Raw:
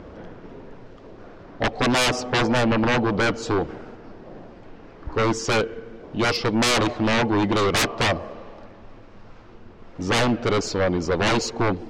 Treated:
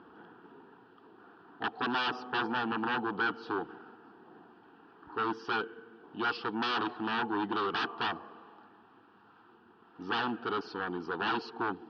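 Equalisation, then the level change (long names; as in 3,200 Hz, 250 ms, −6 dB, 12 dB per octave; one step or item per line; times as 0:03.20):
loudspeaker in its box 460–4,200 Hz, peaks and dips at 630 Hz −5 dB, 1,100 Hz −7 dB, 2,500 Hz −4 dB, 3,800 Hz −7 dB
high-shelf EQ 2,800 Hz −10 dB
phaser with its sweep stopped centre 2,100 Hz, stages 6
0.0 dB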